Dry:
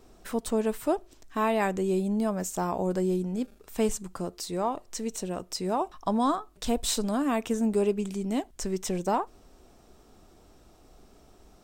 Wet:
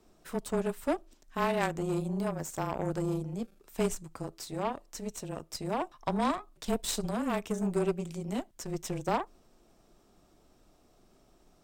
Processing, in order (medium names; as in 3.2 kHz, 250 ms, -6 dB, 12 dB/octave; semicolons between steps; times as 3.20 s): frequency shift -26 Hz; Chebyshev shaper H 3 -15 dB, 8 -27 dB, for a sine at -12.5 dBFS